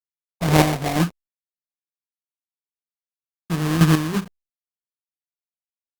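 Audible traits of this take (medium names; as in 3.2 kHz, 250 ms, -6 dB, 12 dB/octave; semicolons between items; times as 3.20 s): aliases and images of a low sample rate 1.4 kHz, jitter 20%; chopped level 2.1 Hz, depth 60%, duty 30%; a quantiser's noise floor 8-bit, dither none; Opus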